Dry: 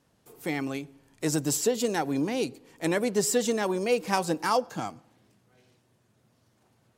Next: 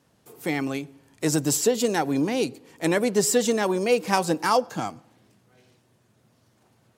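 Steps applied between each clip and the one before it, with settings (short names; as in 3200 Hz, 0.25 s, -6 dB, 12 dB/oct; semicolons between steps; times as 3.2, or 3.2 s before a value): HPF 57 Hz; gain +4 dB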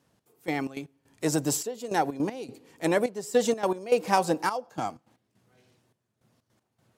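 dynamic EQ 700 Hz, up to +6 dB, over -33 dBFS, Q 1; step gate "xx...xx.x..xxxx" 157 bpm -12 dB; gain -4.5 dB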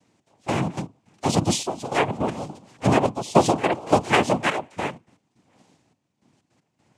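octaver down 1 oct, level 0 dB; noise vocoder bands 4; gain +4.5 dB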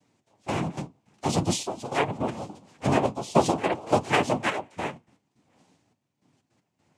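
flange 0.48 Hz, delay 6.5 ms, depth 8.9 ms, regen -44%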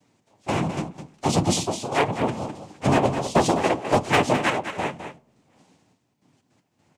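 hard clip -15.5 dBFS, distortion -14 dB; echo 0.208 s -9.5 dB; on a send at -23.5 dB: reverb RT60 0.80 s, pre-delay 10 ms; on the sum: gain +4 dB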